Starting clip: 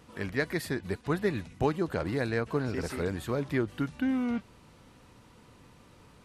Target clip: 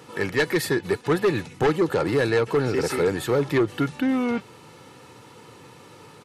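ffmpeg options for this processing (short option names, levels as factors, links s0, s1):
-filter_complex "[0:a]highpass=f=120:w=0.5412,highpass=f=120:w=1.3066,aecho=1:1:2.3:0.5,asplit=2[s0][s1];[s1]aeval=exprs='0.251*sin(PI/2*3.55*val(0)/0.251)':c=same,volume=0.398[s2];[s0][s2]amix=inputs=2:normalize=0"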